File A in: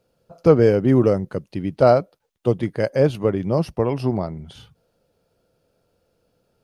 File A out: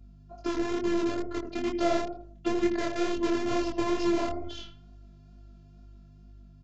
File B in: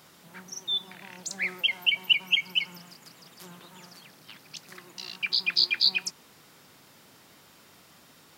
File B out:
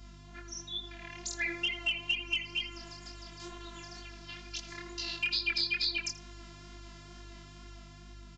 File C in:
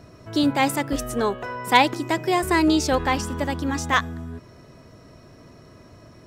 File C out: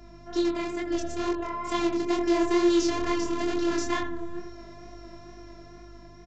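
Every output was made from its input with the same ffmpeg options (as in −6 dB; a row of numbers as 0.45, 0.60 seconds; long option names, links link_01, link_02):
-filter_complex "[0:a]acrossover=split=110|410[link_01][link_02][link_03];[link_01]acompressor=threshold=-39dB:ratio=4[link_04];[link_02]acompressor=threshold=-25dB:ratio=4[link_05];[link_03]acompressor=threshold=-32dB:ratio=4[link_06];[link_04][link_05][link_06]amix=inputs=3:normalize=0,asplit=2[link_07][link_08];[link_08]adelay=82,lowpass=frequency=1700:poles=1,volume=-7dB,asplit=2[link_09][link_10];[link_10]adelay=82,lowpass=frequency=1700:poles=1,volume=0.4,asplit=2[link_11][link_12];[link_12]adelay=82,lowpass=frequency=1700:poles=1,volume=0.4,asplit=2[link_13][link_14];[link_14]adelay=82,lowpass=frequency=1700:poles=1,volume=0.4,asplit=2[link_15][link_16];[link_16]adelay=82,lowpass=frequency=1700:poles=1,volume=0.4[link_17];[link_07][link_09][link_11][link_13][link_15][link_17]amix=inputs=6:normalize=0,dynaudnorm=framelen=240:gausssize=11:maxgain=5.5dB,asplit=2[link_18][link_19];[link_19]aeval=exprs='(mod(7.5*val(0)+1,2)-1)/7.5':channel_layout=same,volume=-7dB[link_20];[link_18][link_20]amix=inputs=2:normalize=0,afftfilt=real='hypot(re,im)*cos(PI*b)':imag='0':win_size=512:overlap=0.75,aeval=exprs='val(0)+0.00501*(sin(2*PI*50*n/s)+sin(2*PI*2*50*n/s)/2+sin(2*PI*3*50*n/s)/3+sin(2*PI*4*50*n/s)/4+sin(2*PI*5*50*n/s)/5)':channel_layout=same,flanger=delay=22.5:depth=4.8:speed=2.2,aresample=16000,aresample=44100"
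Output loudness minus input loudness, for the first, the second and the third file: −10.0, −8.5, −5.0 LU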